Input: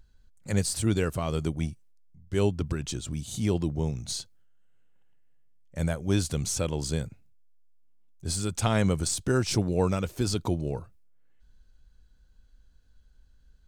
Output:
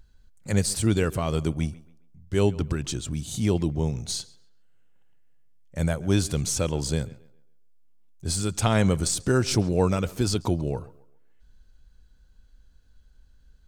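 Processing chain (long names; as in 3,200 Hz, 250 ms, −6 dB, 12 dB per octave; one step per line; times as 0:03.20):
tape delay 137 ms, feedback 35%, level −19 dB, low-pass 3,400 Hz
level +3 dB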